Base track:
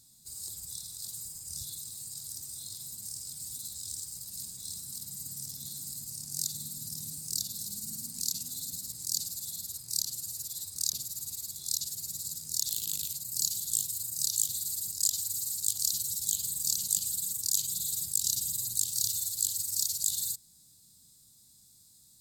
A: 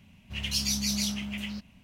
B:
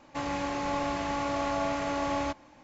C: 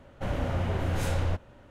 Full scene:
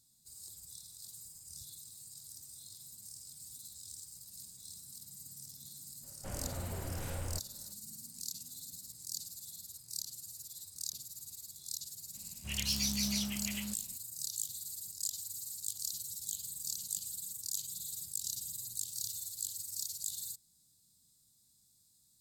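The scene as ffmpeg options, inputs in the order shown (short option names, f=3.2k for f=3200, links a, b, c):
-filter_complex "[0:a]volume=-9.5dB[a];[3:a]atrim=end=1.7,asetpts=PTS-STARTPTS,volume=-12dB,afade=t=in:d=0.004:c=hsin,afade=t=out:st=1.696:d=0.004:c=hsin,adelay=6030[b];[1:a]atrim=end=1.83,asetpts=PTS-STARTPTS,volume=-5dB,afade=t=in:d=0.004:c=hsin,afade=t=out:st=1.826:d=0.004:c=hsin,adelay=12140[c];[a][b][c]amix=inputs=3:normalize=0"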